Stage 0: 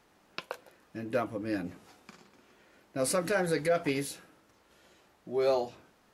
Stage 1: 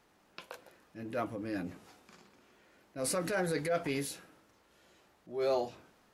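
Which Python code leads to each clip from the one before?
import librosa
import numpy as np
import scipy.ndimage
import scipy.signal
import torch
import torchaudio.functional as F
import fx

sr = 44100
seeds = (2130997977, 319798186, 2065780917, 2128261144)

y = fx.transient(x, sr, attack_db=-7, sustain_db=2)
y = F.gain(torch.from_numpy(y), -2.5).numpy()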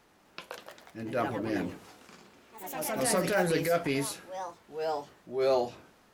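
y = fx.echo_pitch(x, sr, ms=256, semitones=3, count=3, db_per_echo=-6.0)
y = F.gain(torch.from_numpy(y), 4.5).numpy()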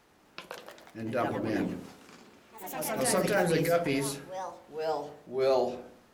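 y = fx.echo_wet_lowpass(x, sr, ms=62, feedback_pct=52, hz=490.0, wet_db=-4)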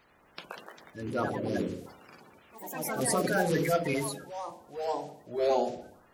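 y = fx.spec_quant(x, sr, step_db=30)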